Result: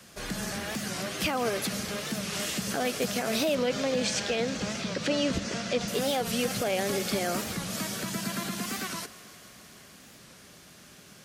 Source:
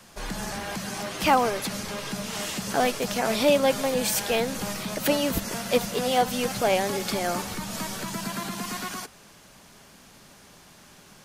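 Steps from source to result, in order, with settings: 3.56–5.88 s: low-pass 6.7 kHz 24 dB/octave; peak limiter -17.5 dBFS, peak gain reduction 9 dB; high-pass 54 Hz; peaking EQ 900 Hz -8.5 dB 0.52 oct; thinning echo 155 ms, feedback 84%, high-pass 170 Hz, level -20 dB; warped record 45 rpm, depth 160 cents

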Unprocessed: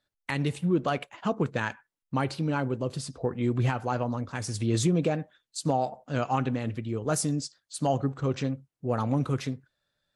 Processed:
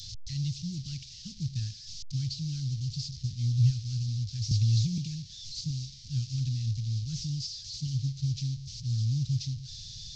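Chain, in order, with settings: one-bit delta coder 32 kbps, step -35.5 dBFS; Chebyshev band-stop 120–4500 Hz, order 3; 4.51–4.98 s: three bands compressed up and down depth 100%; trim +5.5 dB

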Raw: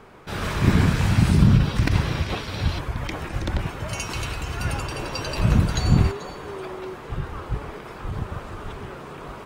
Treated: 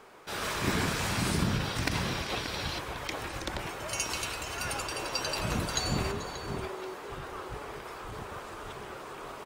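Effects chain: tone controls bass -13 dB, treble +6 dB; echo from a far wall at 100 m, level -7 dB; trim -4 dB

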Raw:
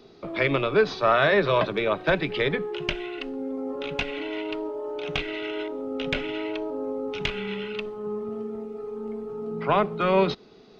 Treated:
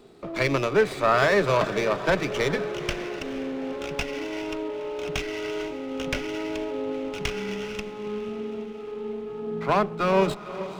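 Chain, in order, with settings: echo that smears into a reverb 471 ms, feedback 60%, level -13 dB; sliding maximum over 5 samples

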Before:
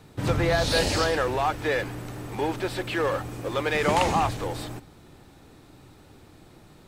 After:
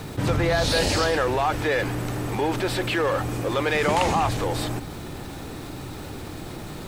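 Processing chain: bit crusher 11-bit; level flattener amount 50%

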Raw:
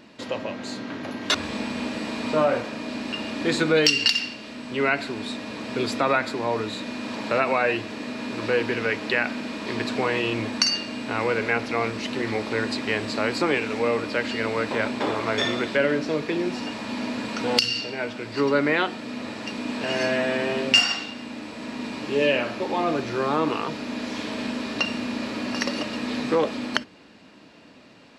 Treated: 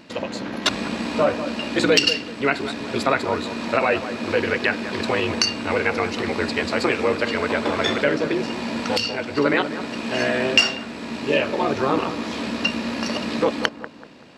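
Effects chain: granular stretch 0.51×, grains 31 ms; on a send: bucket-brigade echo 191 ms, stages 2048, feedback 34%, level -11 dB; on the sum: trim +4 dB

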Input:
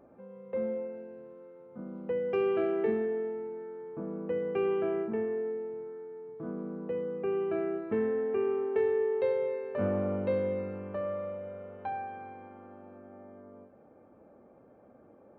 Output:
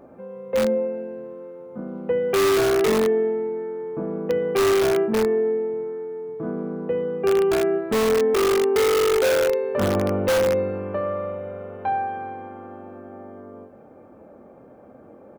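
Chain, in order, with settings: doubling 23 ms -10.5 dB; in parallel at -4 dB: integer overflow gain 23.5 dB; on the sum: trim +6 dB

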